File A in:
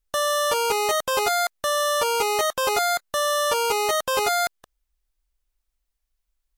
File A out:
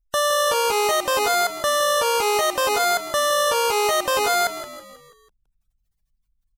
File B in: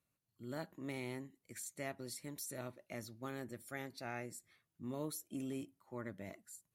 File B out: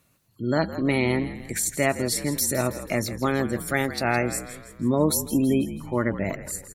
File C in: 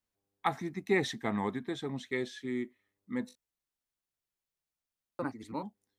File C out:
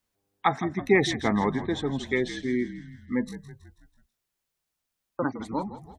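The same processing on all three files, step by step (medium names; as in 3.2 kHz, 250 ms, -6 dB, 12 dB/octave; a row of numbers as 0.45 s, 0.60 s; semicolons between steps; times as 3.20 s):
spectral gate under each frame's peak -30 dB strong; peak limiter -17 dBFS; frequency-shifting echo 163 ms, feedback 51%, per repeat -54 Hz, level -13 dB; peak normalisation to -9 dBFS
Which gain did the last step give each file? +6.0 dB, +21.0 dB, +8.0 dB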